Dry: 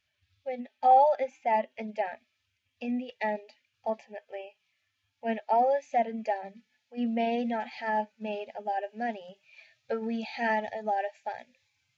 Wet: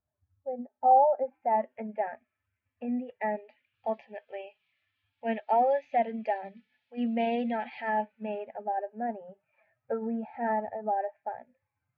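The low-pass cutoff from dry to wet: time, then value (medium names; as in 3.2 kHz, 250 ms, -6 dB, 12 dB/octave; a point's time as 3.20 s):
low-pass 24 dB/octave
1.14 s 1 kHz
1.66 s 1.8 kHz
3.17 s 1.8 kHz
3.89 s 3.6 kHz
7.51 s 3.6 kHz
8.28 s 2.4 kHz
8.84 s 1.4 kHz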